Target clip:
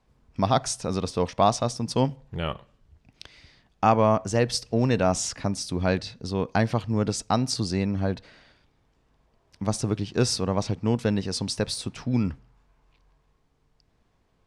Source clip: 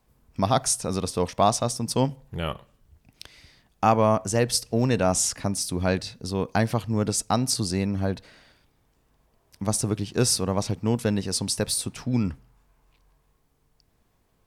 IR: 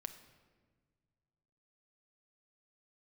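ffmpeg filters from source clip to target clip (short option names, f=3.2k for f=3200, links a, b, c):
-af "lowpass=5.7k"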